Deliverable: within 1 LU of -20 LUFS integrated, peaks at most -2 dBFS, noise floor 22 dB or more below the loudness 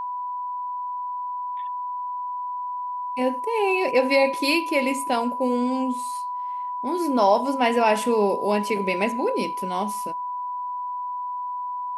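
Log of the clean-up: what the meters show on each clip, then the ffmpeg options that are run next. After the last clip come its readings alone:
steady tone 990 Hz; tone level -27 dBFS; loudness -24.5 LUFS; peak -6.5 dBFS; loudness target -20.0 LUFS
-> -af "bandreject=f=990:w=30"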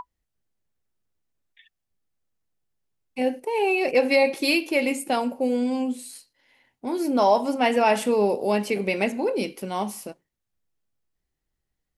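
steady tone none; loudness -23.5 LUFS; peak -7.5 dBFS; loudness target -20.0 LUFS
-> -af "volume=3.5dB"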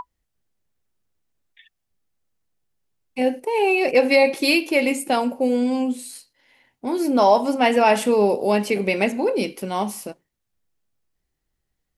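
loudness -20.0 LUFS; peak -4.0 dBFS; noise floor -77 dBFS

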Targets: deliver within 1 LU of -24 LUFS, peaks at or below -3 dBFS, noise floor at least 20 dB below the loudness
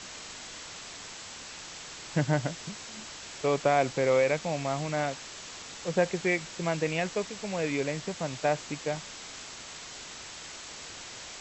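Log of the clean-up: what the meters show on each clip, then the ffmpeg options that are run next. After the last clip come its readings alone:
noise floor -44 dBFS; noise floor target -52 dBFS; loudness -32.0 LUFS; peak -11.5 dBFS; loudness target -24.0 LUFS
-> -af "afftdn=nr=8:nf=-44"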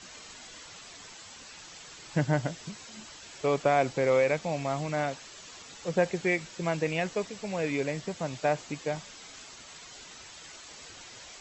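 noise floor -48 dBFS; noise floor target -50 dBFS
-> -af "afftdn=nr=6:nf=-48"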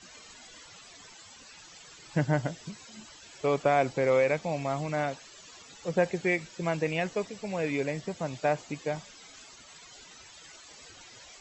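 noise floor -52 dBFS; loudness -30.0 LUFS; peak -12.0 dBFS; loudness target -24.0 LUFS
-> -af "volume=6dB"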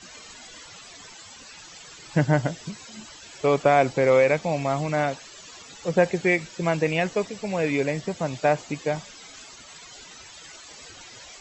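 loudness -24.0 LUFS; peak -6.0 dBFS; noise floor -46 dBFS

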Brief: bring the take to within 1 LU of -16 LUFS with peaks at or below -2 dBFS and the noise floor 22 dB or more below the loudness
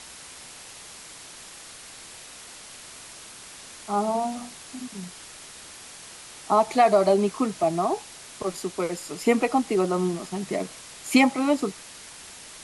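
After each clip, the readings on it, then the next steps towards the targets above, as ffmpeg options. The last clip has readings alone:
noise floor -44 dBFS; noise floor target -47 dBFS; loudness -24.5 LUFS; peak -7.0 dBFS; loudness target -16.0 LUFS
-> -af "afftdn=nr=6:nf=-44"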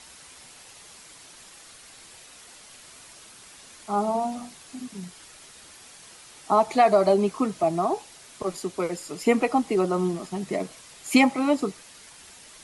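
noise floor -49 dBFS; loudness -24.5 LUFS; peak -7.0 dBFS; loudness target -16.0 LUFS
-> -af "volume=8.5dB,alimiter=limit=-2dB:level=0:latency=1"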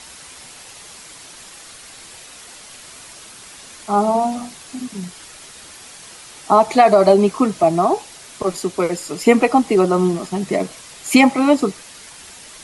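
loudness -16.5 LUFS; peak -2.0 dBFS; noise floor -40 dBFS

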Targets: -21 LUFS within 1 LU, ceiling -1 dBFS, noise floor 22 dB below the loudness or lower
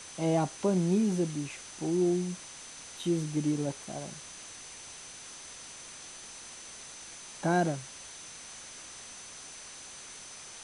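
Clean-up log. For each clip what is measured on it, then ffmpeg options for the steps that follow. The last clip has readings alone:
steady tone 6100 Hz; tone level -49 dBFS; noise floor -47 dBFS; noise floor target -56 dBFS; loudness -34.0 LUFS; peak -16.5 dBFS; loudness target -21.0 LUFS
-> -af "bandreject=f=6.1k:w=30"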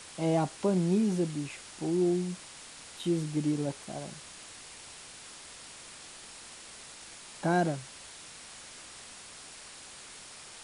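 steady tone none; noise floor -49 dBFS; noise floor target -53 dBFS
-> -af "afftdn=nr=6:nf=-49"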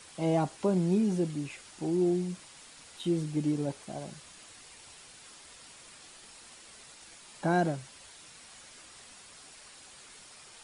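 noise floor -53 dBFS; loudness -31.0 LUFS; peak -16.5 dBFS; loudness target -21.0 LUFS
-> -af "volume=10dB"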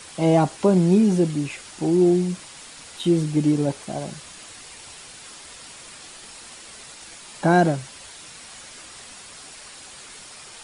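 loudness -21.0 LUFS; peak -6.5 dBFS; noise floor -43 dBFS

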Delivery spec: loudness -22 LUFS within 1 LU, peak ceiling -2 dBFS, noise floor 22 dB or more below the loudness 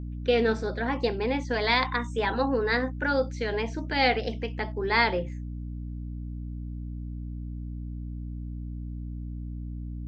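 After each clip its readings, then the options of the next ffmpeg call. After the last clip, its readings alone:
hum 60 Hz; harmonics up to 300 Hz; hum level -33 dBFS; loudness -29.0 LUFS; peak -9.5 dBFS; loudness target -22.0 LUFS
-> -af "bandreject=f=60:t=h:w=4,bandreject=f=120:t=h:w=4,bandreject=f=180:t=h:w=4,bandreject=f=240:t=h:w=4,bandreject=f=300:t=h:w=4"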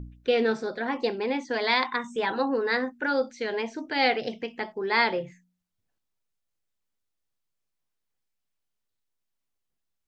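hum none; loudness -27.0 LUFS; peak -10.5 dBFS; loudness target -22.0 LUFS
-> -af "volume=5dB"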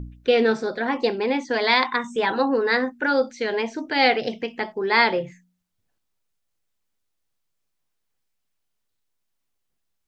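loudness -22.0 LUFS; peak -5.5 dBFS; noise floor -76 dBFS

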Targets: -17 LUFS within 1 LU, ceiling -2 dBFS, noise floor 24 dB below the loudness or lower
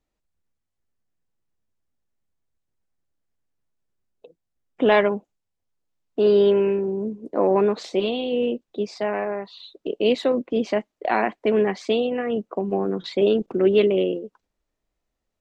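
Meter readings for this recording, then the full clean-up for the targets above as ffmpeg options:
loudness -22.5 LUFS; peak -6.5 dBFS; loudness target -17.0 LUFS
-> -af "volume=5.5dB,alimiter=limit=-2dB:level=0:latency=1"

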